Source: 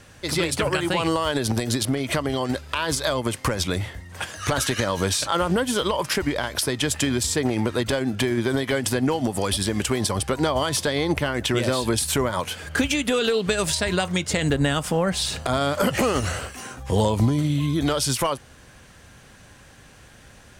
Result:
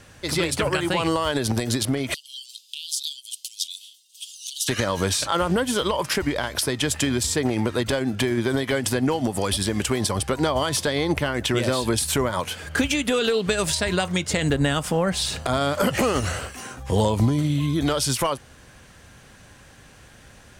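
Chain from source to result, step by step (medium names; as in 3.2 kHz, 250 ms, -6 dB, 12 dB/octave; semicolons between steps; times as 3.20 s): 2.14–4.68 s: steep high-pass 3 kHz 72 dB/octave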